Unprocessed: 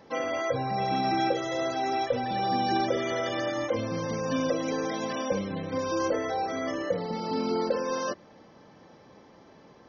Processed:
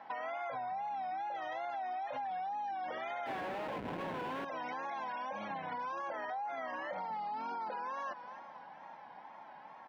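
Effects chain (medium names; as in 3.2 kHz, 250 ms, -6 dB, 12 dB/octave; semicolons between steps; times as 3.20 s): feedback delay 266 ms, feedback 54%, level -23.5 dB; wow and flutter 110 cents; resonant low shelf 600 Hz -11 dB, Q 3; 3.26–4.45 s: Schmitt trigger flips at -33 dBFS; peak limiter -30 dBFS, peak gain reduction 16 dB; three-band isolator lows -20 dB, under 150 Hz, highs -23 dB, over 2.9 kHz; band-stop 1.2 kHz, Q 6.9; compression, threshold -40 dBFS, peak gain reduction 8 dB; trim +3 dB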